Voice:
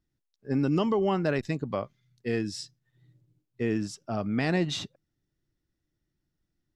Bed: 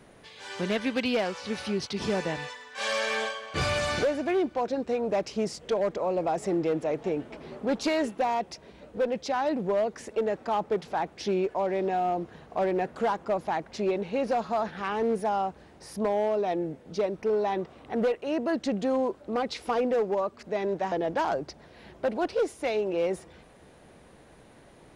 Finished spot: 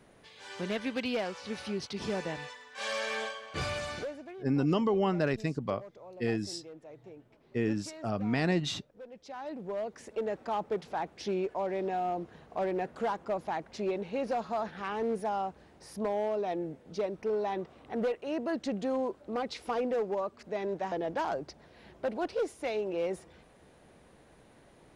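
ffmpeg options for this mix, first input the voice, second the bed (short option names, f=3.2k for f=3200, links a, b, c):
-filter_complex "[0:a]adelay=3950,volume=-2dB[a];[1:a]volume=10.5dB,afade=t=out:st=3.52:d=0.84:silence=0.16788,afade=t=in:st=9.09:d=1.27:silence=0.158489[b];[a][b]amix=inputs=2:normalize=0"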